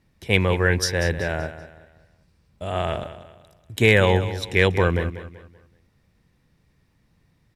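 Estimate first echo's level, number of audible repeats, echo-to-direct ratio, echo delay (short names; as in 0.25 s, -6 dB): -13.0 dB, 3, -12.5 dB, 0.191 s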